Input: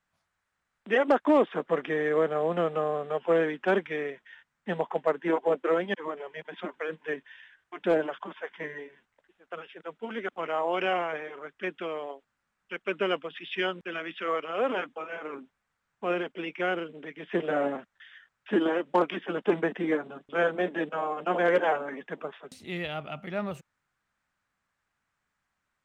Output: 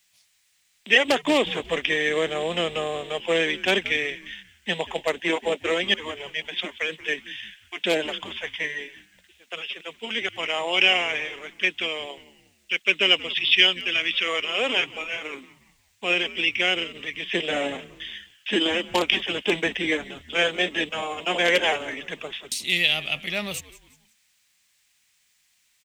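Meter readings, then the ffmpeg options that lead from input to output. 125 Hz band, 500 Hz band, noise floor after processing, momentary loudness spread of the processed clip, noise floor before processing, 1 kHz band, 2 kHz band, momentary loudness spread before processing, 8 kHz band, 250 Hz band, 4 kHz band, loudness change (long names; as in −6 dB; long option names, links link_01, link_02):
+0.5 dB, 0.0 dB, −66 dBFS, 15 LU, −81 dBFS, −0.5 dB, +10.5 dB, 15 LU, can't be measured, 0.0 dB, +20.0 dB, +6.0 dB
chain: -filter_complex "[0:a]asplit=4[link_01][link_02][link_03][link_04];[link_02]adelay=180,afreqshift=-120,volume=-18dB[link_05];[link_03]adelay=360,afreqshift=-240,volume=-25.5dB[link_06];[link_04]adelay=540,afreqshift=-360,volume=-33.1dB[link_07];[link_01][link_05][link_06][link_07]amix=inputs=4:normalize=0,aexciter=amount=12.5:drive=3:freq=2100"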